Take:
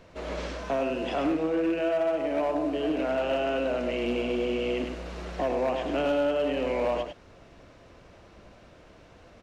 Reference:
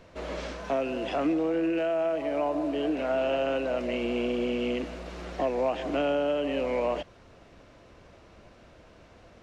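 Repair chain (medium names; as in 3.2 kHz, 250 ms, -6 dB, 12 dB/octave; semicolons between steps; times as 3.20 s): clip repair -21 dBFS; inverse comb 101 ms -5.5 dB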